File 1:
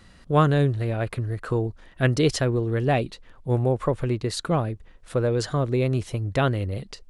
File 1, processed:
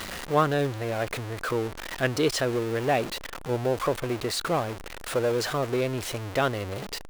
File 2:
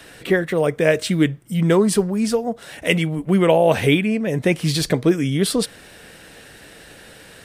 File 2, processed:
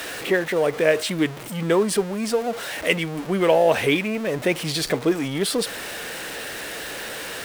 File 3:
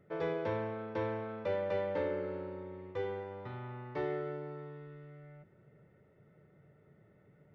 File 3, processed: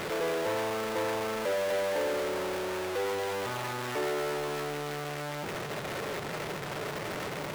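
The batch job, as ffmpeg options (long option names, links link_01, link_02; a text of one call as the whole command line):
ffmpeg -i in.wav -af "aeval=exprs='val(0)+0.5*0.0596*sgn(val(0))':channel_layout=same,bass=frequency=250:gain=-11,treble=frequency=4000:gain=-3,volume=-2dB" out.wav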